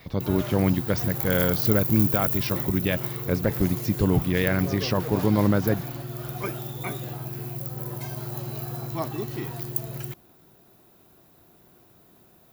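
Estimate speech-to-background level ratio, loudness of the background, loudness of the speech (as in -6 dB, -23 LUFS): 4.5 dB, -29.5 LUFS, -25.0 LUFS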